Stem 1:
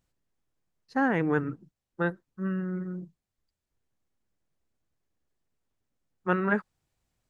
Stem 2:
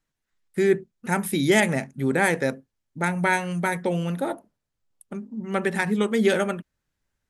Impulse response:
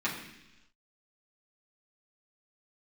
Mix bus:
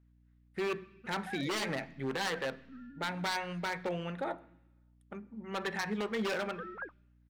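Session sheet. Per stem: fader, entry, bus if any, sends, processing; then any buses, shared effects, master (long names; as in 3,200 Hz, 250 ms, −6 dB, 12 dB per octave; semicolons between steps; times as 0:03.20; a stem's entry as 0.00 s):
−16.5 dB, 0.30 s, no send, three sine waves on the formant tracks
−3.5 dB, 0.00 s, send −21.5 dB, low-pass filter 2,900 Hz 12 dB per octave; parametric band 260 Hz −6.5 dB 1.9 octaves; wave folding −21 dBFS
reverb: on, RT60 0.95 s, pre-delay 3 ms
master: low-shelf EQ 180 Hz −9.5 dB; mains hum 60 Hz, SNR 29 dB; brickwall limiter −25.5 dBFS, peak gain reduction 5 dB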